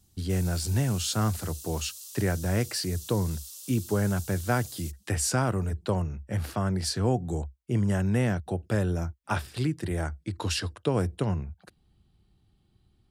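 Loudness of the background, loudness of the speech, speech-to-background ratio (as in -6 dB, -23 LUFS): -41.5 LUFS, -29.0 LUFS, 12.5 dB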